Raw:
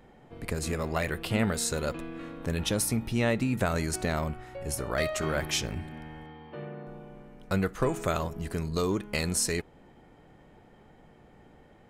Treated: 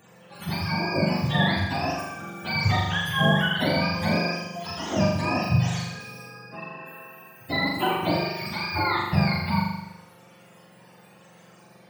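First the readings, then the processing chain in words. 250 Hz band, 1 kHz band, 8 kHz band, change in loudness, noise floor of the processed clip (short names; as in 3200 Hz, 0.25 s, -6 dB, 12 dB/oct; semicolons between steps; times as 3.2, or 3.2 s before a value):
+5.0 dB, +9.5 dB, -10.5 dB, +5.0 dB, -53 dBFS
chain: spectrum mirrored in octaves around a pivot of 620 Hz; flutter echo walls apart 7 m, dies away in 0.94 s; gain +4 dB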